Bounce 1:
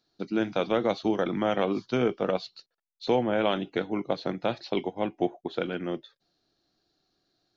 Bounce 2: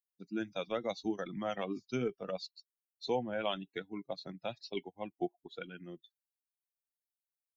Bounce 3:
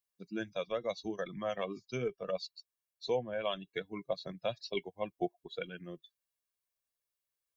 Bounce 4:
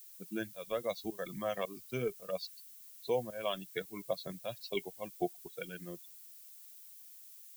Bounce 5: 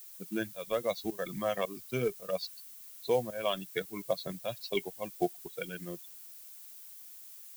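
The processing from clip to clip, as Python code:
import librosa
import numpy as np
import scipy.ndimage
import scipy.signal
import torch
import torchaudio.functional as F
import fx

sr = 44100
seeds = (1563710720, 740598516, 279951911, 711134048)

y1 = fx.bin_expand(x, sr, power=2.0)
y1 = fx.high_shelf(y1, sr, hz=4800.0, db=12.0)
y1 = F.gain(torch.from_numpy(y1), -6.0).numpy()
y2 = y1 + 0.51 * np.pad(y1, (int(1.8 * sr / 1000.0), 0))[:len(y1)]
y2 = fx.rider(y2, sr, range_db=3, speed_s=0.5)
y3 = fx.env_lowpass(y2, sr, base_hz=1600.0, full_db=-30.5)
y3 = fx.volume_shaper(y3, sr, bpm=109, per_beat=1, depth_db=-17, release_ms=234.0, shape='fast start')
y3 = fx.dmg_noise_colour(y3, sr, seeds[0], colour='violet', level_db=-54.0)
y4 = fx.quant_companded(y3, sr, bits=6)
y4 = F.gain(torch.from_numpy(y4), 4.0).numpy()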